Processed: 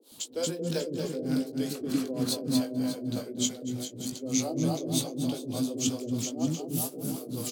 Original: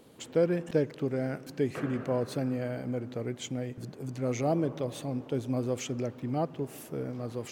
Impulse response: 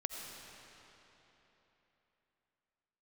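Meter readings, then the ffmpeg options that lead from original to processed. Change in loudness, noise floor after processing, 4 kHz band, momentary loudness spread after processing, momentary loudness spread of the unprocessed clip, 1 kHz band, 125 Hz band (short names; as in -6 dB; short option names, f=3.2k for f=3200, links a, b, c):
+1.5 dB, -45 dBFS, +11.0 dB, 6 LU, 8 LU, -4.0 dB, -1.0 dB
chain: -filter_complex "[0:a]asplit=2[a][b];[b]aecho=0:1:230|425.5|591.7|732.9|853:0.631|0.398|0.251|0.158|0.1[c];[a][c]amix=inputs=2:normalize=0,acrossover=split=470[d][e];[d]aeval=exprs='val(0)*(1-1/2+1/2*cos(2*PI*3.3*n/s))':c=same[f];[e]aeval=exprs='val(0)*(1-1/2-1/2*cos(2*PI*3.3*n/s))':c=same[g];[f][g]amix=inputs=2:normalize=0,equalizer=f=250:t=o:w=1:g=8,equalizer=f=2k:t=o:w=1:g=-7,equalizer=f=4k:t=o:w=1:g=8,acrossover=split=120|2000[h][i][j];[j]crystalizer=i=4:c=0[k];[h][i][k]amix=inputs=3:normalize=0,asplit=2[l][m];[m]adelay=19,volume=-8dB[n];[l][n]amix=inputs=2:normalize=0,acrossover=split=360[o][p];[o]adelay=110[q];[q][p]amix=inputs=2:normalize=0"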